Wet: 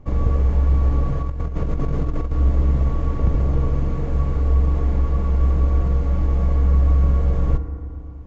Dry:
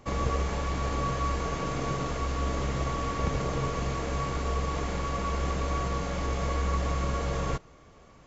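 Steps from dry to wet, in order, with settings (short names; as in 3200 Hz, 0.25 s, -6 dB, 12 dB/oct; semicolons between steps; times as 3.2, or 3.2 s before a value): tilt -4 dB/oct; FDN reverb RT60 2.6 s, low-frequency decay 1.4×, high-frequency decay 0.25×, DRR 7.5 dB; 1.22–2.32 negative-ratio compressor -17 dBFS, ratio -0.5; gain -3.5 dB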